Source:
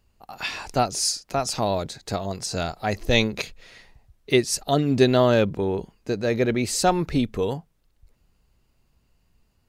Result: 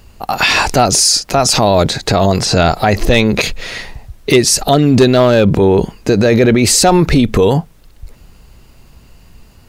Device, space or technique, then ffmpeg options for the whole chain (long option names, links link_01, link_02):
loud club master: -filter_complex "[0:a]asettb=1/sr,asplit=3[link_01][link_02][link_03];[link_01]atrim=end=1.804[link_04];[link_02]atrim=start=1.8:end=3.41,asetpts=PTS-STARTPTS,afade=type=in:duration=0.004:curve=qsin,afade=type=out:start_time=1.606:duration=0.004:curve=qsin,acrossover=split=4000[link_05][link_06];[link_06]acompressor=threshold=-45dB:ratio=4:attack=1:release=60[link_07];[link_05][link_07]amix=inputs=2:normalize=0[link_08];[link_03]atrim=start=3.406[link_09];[link_04][link_08]acrossfade=duration=0.004:curve1=hsin:curve2=qsin[link_10];[link_10][link_09]acrossfade=duration=0.004:curve1=qsin:curve2=hsin,acompressor=threshold=-24dB:ratio=1.5,asoftclip=type=hard:threshold=-15dB,alimiter=level_in=24dB:limit=-1dB:release=50:level=0:latency=1,volume=-1dB"